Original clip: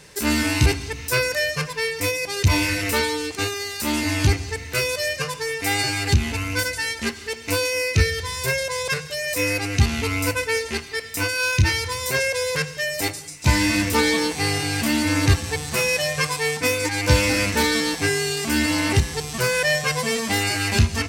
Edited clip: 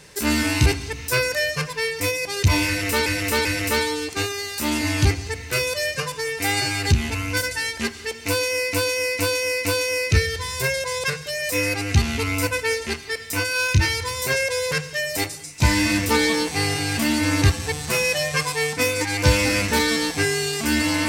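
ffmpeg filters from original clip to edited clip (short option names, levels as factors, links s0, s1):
-filter_complex "[0:a]asplit=6[s0][s1][s2][s3][s4][s5];[s0]atrim=end=3.062[s6];[s1]atrim=start=2.668:end=3.062[s7];[s2]atrim=start=2.668:end=7.952[s8];[s3]atrim=start=7.488:end=7.952[s9];[s4]atrim=start=7.488:end=7.952[s10];[s5]atrim=start=7.488[s11];[s6][s7]acrossfade=d=0.004:c1=hsin:c2=hsin[s12];[s12][s8]acrossfade=d=0.004:c1=hsin:c2=hsin[s13];[s13][s9]acrossfade=d=0.004:c1=hsin:c2=hsin[s14];[s14][s10]acrossfade=d=0.004:c1=hsin:c2=hsin[s15];[s15][s11]acrossfade=d=0.004:c1=hsin:c2=hsin"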